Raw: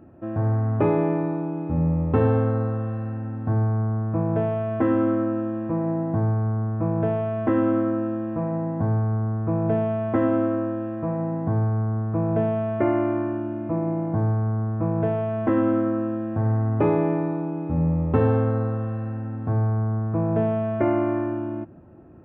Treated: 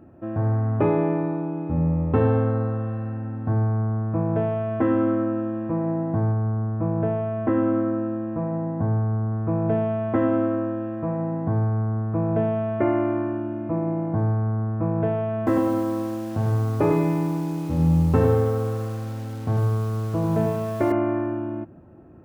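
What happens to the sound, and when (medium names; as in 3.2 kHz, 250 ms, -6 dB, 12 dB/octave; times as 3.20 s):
6.32–9.32 s: distance through air 260 m
15.37–20.92 s: bit-crushed delay 98 ms, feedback 35%, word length 7-bit, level -5 dB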